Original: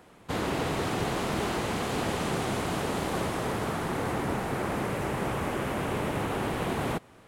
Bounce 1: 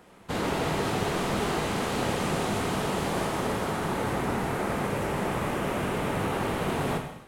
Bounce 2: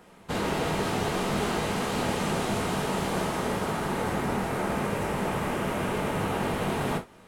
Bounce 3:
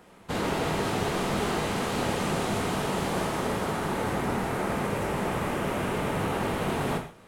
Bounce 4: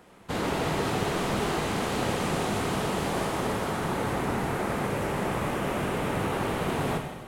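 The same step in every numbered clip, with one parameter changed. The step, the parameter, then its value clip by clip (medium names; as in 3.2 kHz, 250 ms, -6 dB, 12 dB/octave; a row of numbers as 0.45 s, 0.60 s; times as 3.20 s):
gated-style reverb, gate: 310 ms, 90 ms, 180 ms, 480 ms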